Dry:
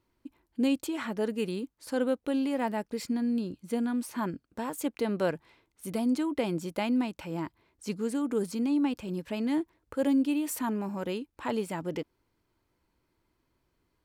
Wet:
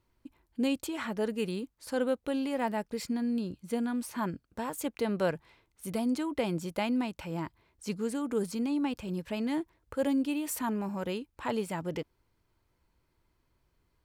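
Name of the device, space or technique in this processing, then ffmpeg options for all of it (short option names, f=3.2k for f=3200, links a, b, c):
low shelf boost with a cut just above: -af "lowshelf=f=98:g=6.5,equalizer=f=290:t=o:w=0.82:g=-4.5"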